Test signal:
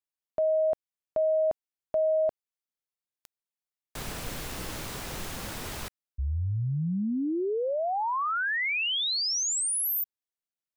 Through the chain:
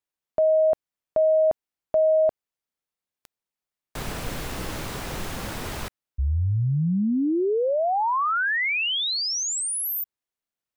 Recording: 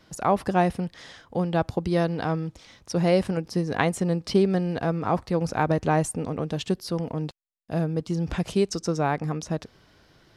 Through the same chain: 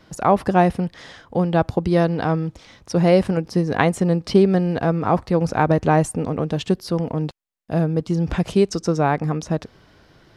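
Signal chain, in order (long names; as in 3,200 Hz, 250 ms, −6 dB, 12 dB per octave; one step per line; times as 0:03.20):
high-shelf EQ 3,000 Hz −5.5 dB
level +6 dB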